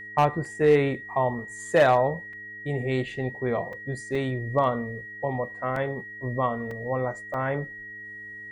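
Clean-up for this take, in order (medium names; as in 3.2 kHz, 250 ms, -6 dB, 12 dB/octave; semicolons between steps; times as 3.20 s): clip repair -12 dBFS; de-hum 106.3 Hz, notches 4; band-stop 1.9 kHz, Q 30; interpolate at 0.45/2.33/3.73/4.15/5.76/6.71/7.34 s, 3.2 ms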